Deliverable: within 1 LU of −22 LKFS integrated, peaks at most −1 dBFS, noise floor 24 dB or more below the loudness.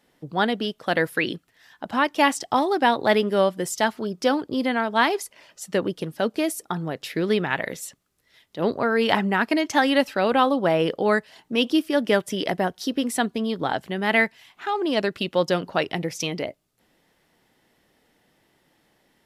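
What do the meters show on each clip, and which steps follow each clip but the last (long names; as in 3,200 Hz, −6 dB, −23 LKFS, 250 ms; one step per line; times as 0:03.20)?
integrated loudness −23.5 LKFS; sample peak −3.5 dBFS; target loudness −22.0 LKFS
→ level +1.5 dB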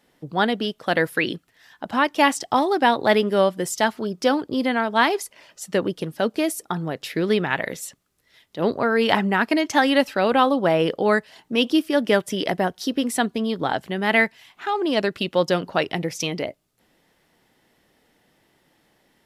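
integrated loudness −22.0 LKFS; sample peak −2.0 dBFS; background noise floor −65 dBFS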